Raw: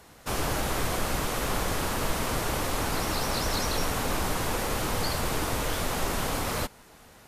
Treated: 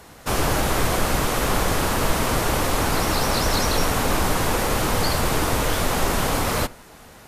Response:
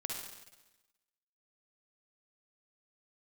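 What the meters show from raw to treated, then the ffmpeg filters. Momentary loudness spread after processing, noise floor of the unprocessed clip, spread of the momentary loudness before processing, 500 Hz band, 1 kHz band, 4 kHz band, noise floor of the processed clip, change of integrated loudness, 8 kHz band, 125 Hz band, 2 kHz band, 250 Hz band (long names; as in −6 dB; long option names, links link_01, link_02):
1 LU, −53 dBFS, 2 LU, +7.5 dB, +7.5 dB, +6.5 dB, −46 dBFS, +7.0 dB, +6.5 dB, +7.5 dB, +7.0 dB, +7.5 dB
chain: -filter_complex "[0:a]asplit=2[link_01][link_02];[1:a]atrim=start_sample=2205,atrim=end_sample=4410,lowpass=2600[link_03];[link_02][link_03]afir=irnorm=-1:irlink=0,volume=-15dB[link_04];[link_01][link_04]amix=inputs=2:normalize=0,volume=6.5dB"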